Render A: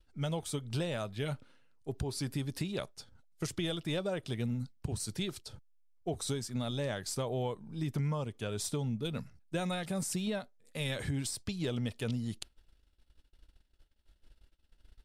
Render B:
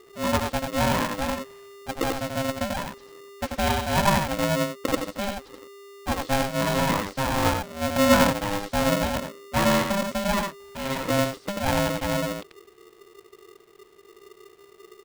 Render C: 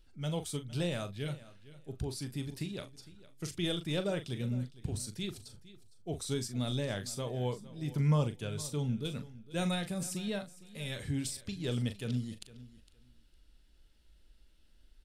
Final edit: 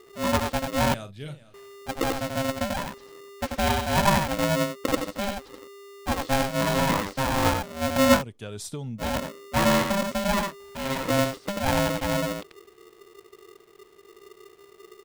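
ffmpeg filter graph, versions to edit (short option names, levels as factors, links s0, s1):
-filter_complex "[1:a]asplit=3[s0][s1][s2];[s0]atrim=end=0.942[s3];[2:a]atrim=start=0.938:end=1.542[s4];[s1]atrim=start=1.538:end=8.23[s5];[0:a]atrim=start=8.13:end=9.08[s6];[s2]atrim=start=8.98[s7];[s3][s4]acrossfade=d=0.004:c1=hsin:c2=hsin[s8];[s8][s5]acrossfade=d=0.004:c1=hsin:c2=hsin[s9];[s9][s6]acrossfade=d=0.1:c1=tri:c2=tri[s10];[s10][s7]acrossfade=d=0.1:c1=tri:c2=tri"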